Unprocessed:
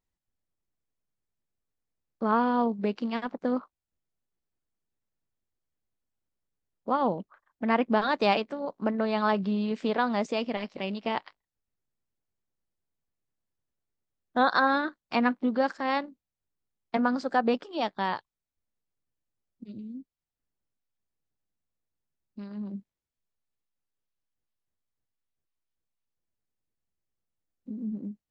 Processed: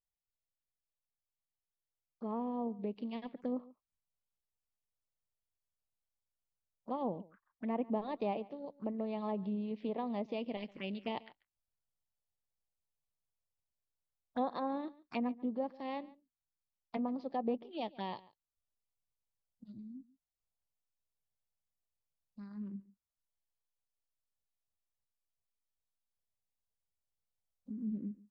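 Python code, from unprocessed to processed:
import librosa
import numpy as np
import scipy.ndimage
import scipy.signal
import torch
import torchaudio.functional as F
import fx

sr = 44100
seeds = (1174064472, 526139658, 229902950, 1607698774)

p1 = fx.env_phaser(x, sr, low_hz=300.0, high_hz=1500.0, full_db=-27.5)
p2 = fx.env_lowpass_down(p1, sr, base_hz=1400.0, full_db=-23.5)
p3 = fx.rider(p2, sr, range_db=10, speed_s=2.0)
p4 = p3 + fx.echo_single(p3, sr, ms=141, db=-21.0, dry=0)
y = p4 * 10.0 ** (-8.5 / 20.0)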